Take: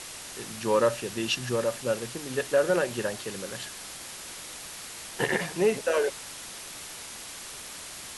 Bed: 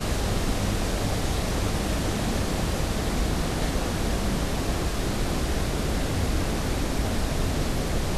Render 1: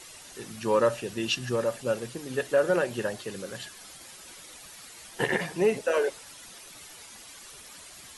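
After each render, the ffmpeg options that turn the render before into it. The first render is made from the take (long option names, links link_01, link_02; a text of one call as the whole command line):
ffmpeg -i in.wav -af "afftdn=noise_reduction=10:noise_floor=-42" out.wav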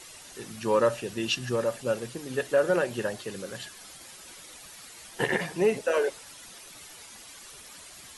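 ffmpeg -i in.wav -af anull out.wav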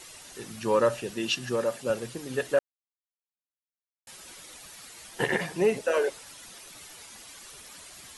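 ffmpeg -i in.wav -filter_complex "[0:a]asettb=1/sr,asplit=3[link_01][link_02][link_03];[link_01]atrim=end=1.104[link_04];[link_02]atrim=start=1.1:end=1.9,asetpts=PTS-STARTPTS,afade=type=in:duration=0.004:curve=qsin,afade=type=out:start_time=0.796:duration=0.004:curve=qsin,highpass=140[link_05];[link_03]atrim=start=1.896[link_06];[link_04][link_05]acrossfade=duration=0.004:curve1=hsin:curve2=qsin[link_07];[link_07][link_06]acrossfade=duration=0.004:curve1=qsin:curve2=hsin,asplit=3[link_08][link_09][link_10];[link_08]atrim=end=2.59,asetpts=PTS-STARTPTS,afade=type=out:start_time=2.586:duration=0.004:curve=hsin[link_11];[link_09]atrim=start=2.59:end=4.07,asetpts=PTS-STARTPTS,volume=0[link_12];[link_10]atrim=start=4.07,asetpts=PTS-STARTPTS,afade=type=in:duration=0.004:curve=hsin[link_13];[link_11][link_12][link_13]concat=n=3:v=0:a=1" out.wav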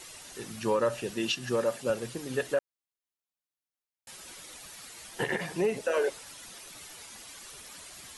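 ffmpeg -i in.wav -af "alimiter=limit=-18dB:level=0:latency=1:release=162" out.wav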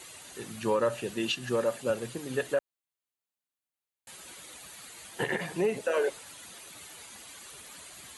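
ffmpeg -i in.wav -af "highpass=56,equalizer=frequency=5400:width=6.6:gain=-9.5" out.wav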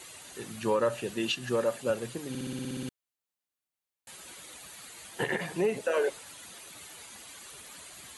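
ffmpeg -i in.wav -filter_complex "[0:a]asplit=11[link_01][link_02][link_03][link_04][link_05][link_06][link_07][link_08][link_09][link_10][link_11];[link_01]atrim=end=2.352[link_12];[link_02]atrim=start=2.288:end=2.352[link_13];[link_03]atrim=start=2.288:end=2.352[link_14];[link_04]atrim=start=2.288:end=2.352[link_15];[link_05]atrim=start=2.288:end=2.352[link_16];[link_06]atrim=start=2.288:end=2.352[link_17];[link_07]atrim=start=2.288:end=2.352[link_18];[link_08]atrim=start=2.288:end=2.352[link_19];[link_09]atrim=start=2.288:end=2.352[link_20];[link_10]atrim=start=2.288:end=2.352[link_21];[link_11]atrim=start=2.888[link_22];[link_12][link_13]acrossfade=duration=0.004:curve1=hsin:curve2=hsin[link_23];[link_23][link_14]acrossfade=duration=0.004:curve1=hsin:curve2=hsin[link_24];[link_24][link_15]acrossfade=duration=0.004:curve1=hsin:curve2=hsin[link_25];[link_25][link_16]acrossfade=duration=0.004:curve1=hsin:curve2=hsin[link_26];[link_26][link_17]acrossfade=duration=0.004:curve1=hsin:curve2=hsin[link_27];[link_27][link_18]acrossfade=duration=0.004:curve1=hsin:curve2=hsin[link_28];[link_28][link_19]acrossfade=duration=0.004:curve1=hsin:curve2=hsin[link_29];[link_29][link_20]acrossfade=duration=0.004:curve1=hsin:curve2=hsin[link_30];[link_30][link_21]acrossfade=duration=0.004:curve1=hsin:curve2=hsin[link_31];[link_31][link_22]acrossfade=duration=0.004:curve1=hsin:curve2=hsin" out.wav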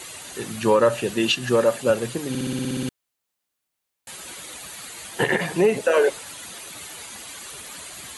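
ffmpeg -i in.wav -af "volume=9.5dB" out.wav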